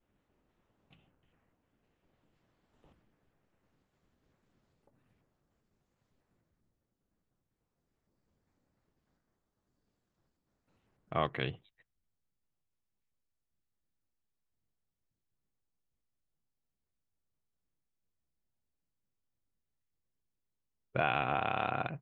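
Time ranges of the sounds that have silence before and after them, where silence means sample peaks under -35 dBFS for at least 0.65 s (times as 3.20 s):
11.12–11.50 s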